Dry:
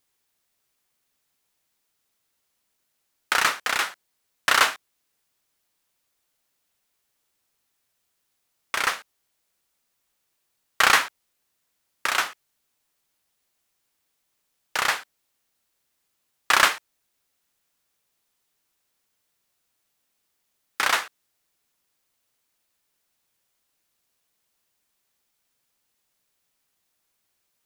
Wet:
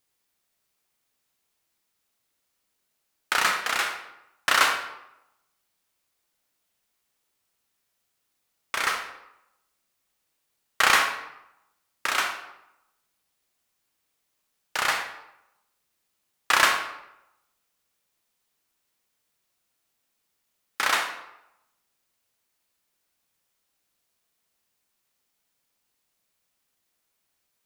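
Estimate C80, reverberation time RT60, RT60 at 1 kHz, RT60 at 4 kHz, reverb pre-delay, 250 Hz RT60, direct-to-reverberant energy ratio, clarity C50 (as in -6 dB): 9.0 dB, 0.85 s, 0.90 s, 0.60 s, 27 ms, 0.85 s, 3.5 dB, 6.0 dB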